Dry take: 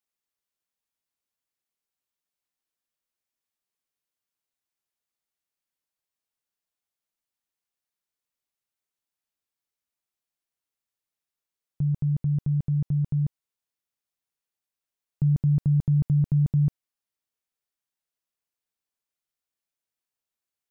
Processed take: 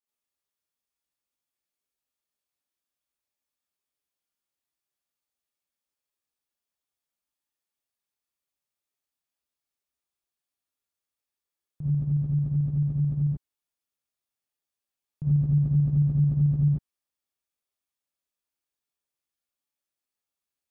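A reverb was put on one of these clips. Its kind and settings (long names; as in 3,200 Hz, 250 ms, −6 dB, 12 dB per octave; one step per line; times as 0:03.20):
reverb whose tail is shaped and stops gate 110 ms rising, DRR −7.5 dB
level −9 dB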